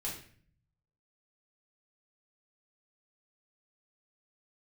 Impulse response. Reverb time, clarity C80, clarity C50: 0.50 s, 10.0 dB, 5.0 dB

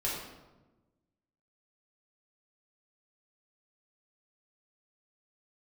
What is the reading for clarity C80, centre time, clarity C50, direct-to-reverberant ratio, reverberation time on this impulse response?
4.0 dB, 61 ms, 1.5 dB, −7.0 dB, 1.1 s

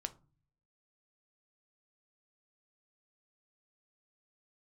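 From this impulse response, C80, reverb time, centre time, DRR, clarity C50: 24.5 dB, non-exponential decay, 4 ms, 8.5 dB, 18.5 dB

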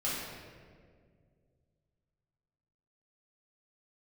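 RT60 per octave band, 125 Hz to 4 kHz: 3.2, 2.6, 2.4, 1.6, 1.5, 1.1 seconds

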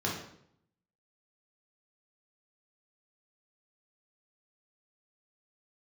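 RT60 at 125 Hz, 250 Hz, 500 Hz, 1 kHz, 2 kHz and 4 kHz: 0.90, 0.80, 0.70, 0.65, 0.60, 0.55 seconds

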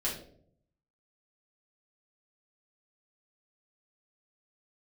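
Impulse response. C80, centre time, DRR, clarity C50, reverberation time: 10.0 dB, 32 ms, −6.5 dB, 6.0 dB, 0.65 s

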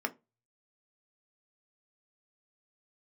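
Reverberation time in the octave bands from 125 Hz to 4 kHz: 0.70, 0.25, 0.25, 0.20, 0.20, 0.15 seconds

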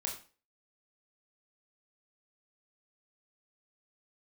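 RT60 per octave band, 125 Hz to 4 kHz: 0.35, 0.40, 0.35, 0.35, 0.35, 0.35 seconds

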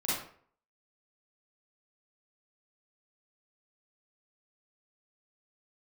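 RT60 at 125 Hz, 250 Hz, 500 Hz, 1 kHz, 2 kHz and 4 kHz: 0.55, 0.50, 0.55, 0.50, 0.45, 0.35 seconds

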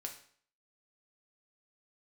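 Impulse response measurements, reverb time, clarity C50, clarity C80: 0.55 s, 9.5 dB, 13.0 dB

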